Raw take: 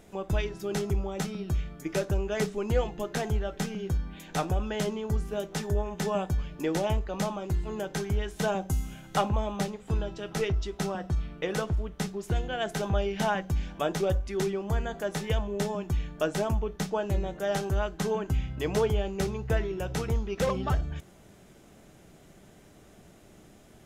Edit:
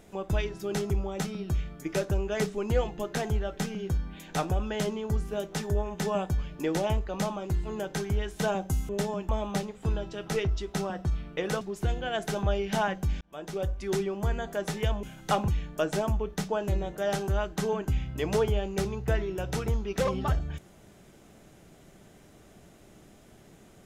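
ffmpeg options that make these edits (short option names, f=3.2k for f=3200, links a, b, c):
-filter_complex "[0:a]asplit=7[a][b][c][d][e][f][g];[a]atrim=end=8.892[h];[b]atrim=start=15.498:end=15.902[i];[c]atrim=start=9.338:end=11.662[j];[d]atrim=start=12.078:end=13.68,asetpts=PTS-STARTPTS,afade=t=out:st=1.598:d=0.004:c=hsin[k];[e]atrim=start=13.68:end=15.502,asetpts=PTS-STARTPTS,afade=t=in:d=0.69[l];[f]atrim=start=8.888:end=9.342[m];[g]atrim=start=15.898[n];[h][i]acrossfade=d=0.004:c1=hsin:c2=hsin[o];[o][j]acrossfade=d=0.004:c1=hsin:c2=hsin[p];[k][l]concat=n=2:v=0:a=1[q];[p][q]acrossfade=d=0.004:c1=hsin:c2=hsin[r];[r][m]acrossfade=d=0.004:c1=hsin:c2=hsin[s];[s][n]acrossfade=d=0.004:c1=hsin:c2=hsin"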